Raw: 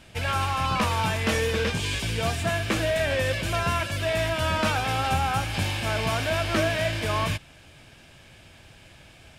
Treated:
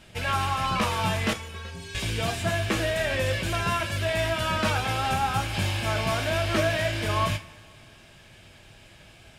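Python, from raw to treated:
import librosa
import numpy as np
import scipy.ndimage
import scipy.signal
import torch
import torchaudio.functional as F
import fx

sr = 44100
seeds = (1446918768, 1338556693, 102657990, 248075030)

y = fx.stiff_resonator(x, sr, f0_hz=81.0, decay_s=0.58, stiffness=0.03, at=(1.33, 1.95))
y = fx.rev_double_slope(y, sr, seeds[0], early_s=0.25, late_s=1.8, knee_db=-19, drr_db=6.0)
y = y * librosa.db_to_amplitude(-1.5)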